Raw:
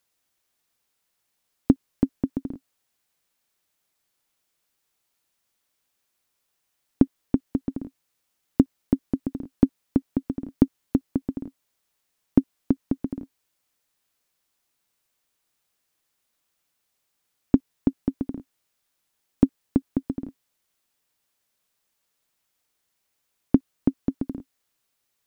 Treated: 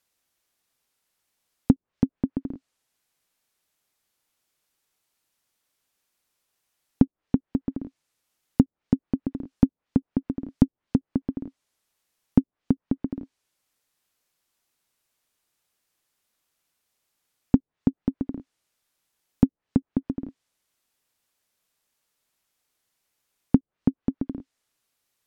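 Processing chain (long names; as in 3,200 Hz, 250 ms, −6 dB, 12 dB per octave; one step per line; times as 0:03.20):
treble cut that deepens with the level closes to 400 Hz, closed at −19.5 dBFS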